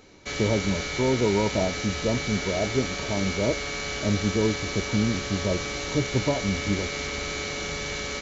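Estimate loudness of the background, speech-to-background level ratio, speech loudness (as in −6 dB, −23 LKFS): −30.0 LKFS, 2.5 dB, −27.5 LKFS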